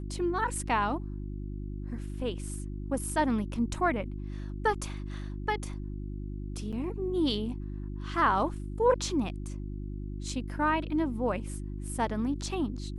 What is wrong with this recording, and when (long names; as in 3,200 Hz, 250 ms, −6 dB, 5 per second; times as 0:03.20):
mains hum 50 Hz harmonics 7 −37 dBFS
0:06.72–0:06.73: drop-out 6.6 ms